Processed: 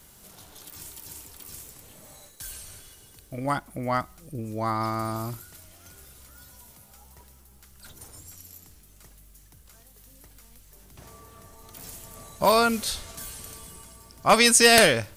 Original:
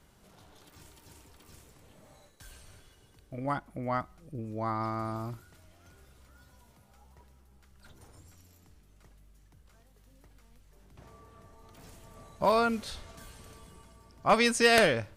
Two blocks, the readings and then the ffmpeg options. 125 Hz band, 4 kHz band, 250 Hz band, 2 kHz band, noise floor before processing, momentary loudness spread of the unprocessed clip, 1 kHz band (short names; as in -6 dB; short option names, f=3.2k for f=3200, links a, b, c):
+4.5 dB, +9.5 dB, +4.5 dB, +6.0 dB, -61 dBFS, 21 LU, +5.5 dB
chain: -af "aemphasis=mode=production:type=75kf,apsyclip=12dB,volume=-7.5dB"